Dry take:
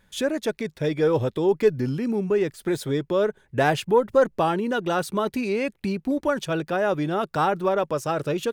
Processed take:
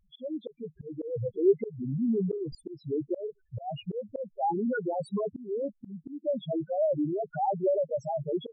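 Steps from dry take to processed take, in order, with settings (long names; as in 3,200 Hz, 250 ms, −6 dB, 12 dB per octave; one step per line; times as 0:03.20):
spectral peaks only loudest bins 2
volume swells 316 ms
0:01.91–0:02.55: level that may fall only so fast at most 78 dB per second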